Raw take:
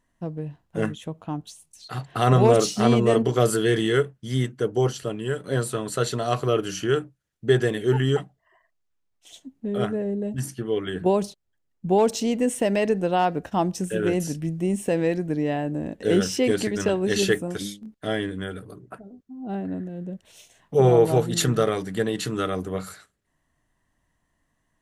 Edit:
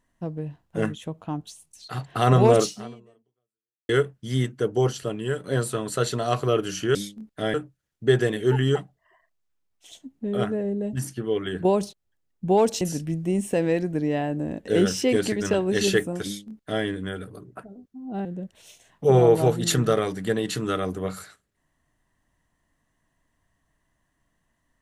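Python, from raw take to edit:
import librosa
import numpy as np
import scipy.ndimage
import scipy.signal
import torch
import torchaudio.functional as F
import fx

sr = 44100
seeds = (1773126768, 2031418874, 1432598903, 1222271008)

y = fx.edit(x, sr, fx.fade_out_span(start_s=2.62, length_s=1.27, curve='exp'),
    fx.cut(start_s=12.22, length_s=1.94),
    fx.duplicate(start_s=17.6, length_s=0.59, to_s=6.95),
    fx.cut(start_s=19.6, length_s=0.35), tone=tone)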